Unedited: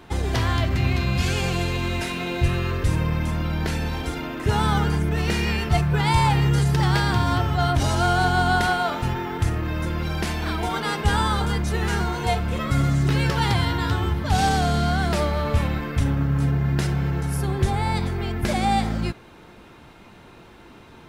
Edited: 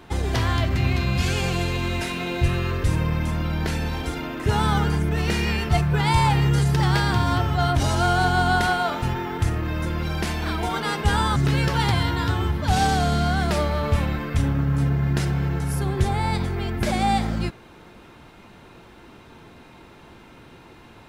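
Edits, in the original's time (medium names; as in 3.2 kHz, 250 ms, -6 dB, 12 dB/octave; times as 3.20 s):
11.36–12.98 s: delete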